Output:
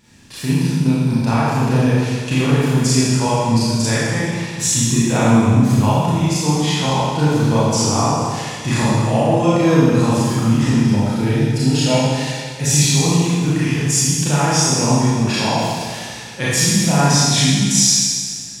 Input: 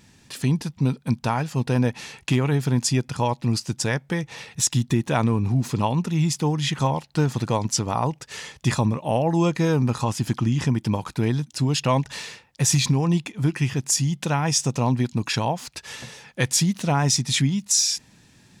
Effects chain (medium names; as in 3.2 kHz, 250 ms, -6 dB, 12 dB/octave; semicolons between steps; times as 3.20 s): 10.75–12.91 s: Butterworth band-stop 1.1 kHz, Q 3.6; Schroeder reverb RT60 1.8 s, combs from 27 ms, DRR -9.5 dB; trim -2.5 dB